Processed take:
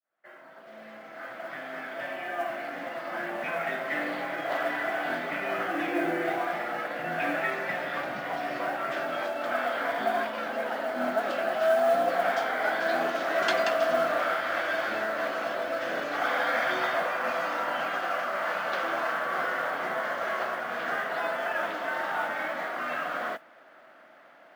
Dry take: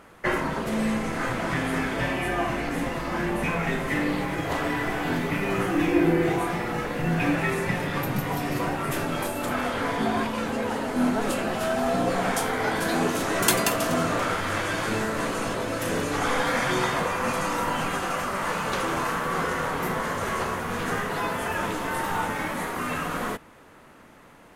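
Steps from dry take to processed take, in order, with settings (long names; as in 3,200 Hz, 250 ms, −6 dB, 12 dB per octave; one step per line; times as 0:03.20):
fade in at the beginning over 4.18 s
loudspeaker in its box 440–4,400 Hz, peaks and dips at 440 Hz −9 dB, 650 Hz +9 dB, 970 Hz −7 dB, 1,500 Hz +4 dB, 2,600 Hz −4 dB, 3,900 Hz −4 dB
noise that follows the level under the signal 28 dB
level −1.5 dB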